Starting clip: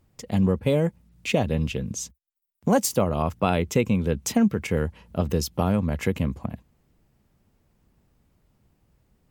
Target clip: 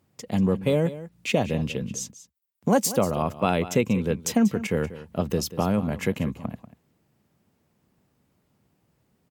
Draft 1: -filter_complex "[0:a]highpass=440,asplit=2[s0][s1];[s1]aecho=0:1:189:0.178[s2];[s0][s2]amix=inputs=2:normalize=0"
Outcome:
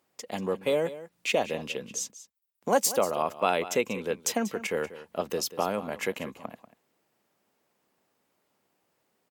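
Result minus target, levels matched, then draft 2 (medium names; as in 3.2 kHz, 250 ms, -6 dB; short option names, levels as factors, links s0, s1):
125 Hz band -12.0 dB
-filter_complex "[0:a]highpass=120,asplit=2[s0][s1];[s1]aecho=0:1:189:0.178[s2];[s0][s2]amix=inputs=2:normalize=0"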